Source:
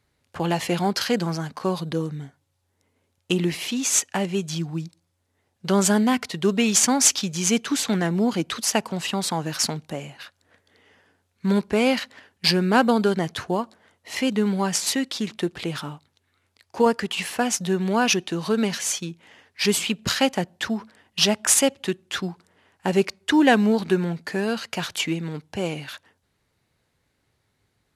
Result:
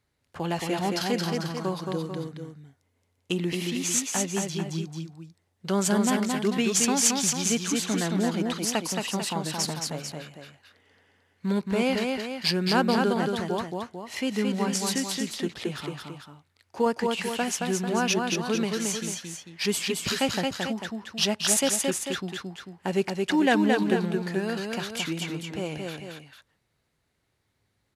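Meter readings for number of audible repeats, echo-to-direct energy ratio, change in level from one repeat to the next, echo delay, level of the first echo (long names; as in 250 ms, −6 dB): 2, −2.5 dB, −5.5 dB, 222 ms, −3.5 dB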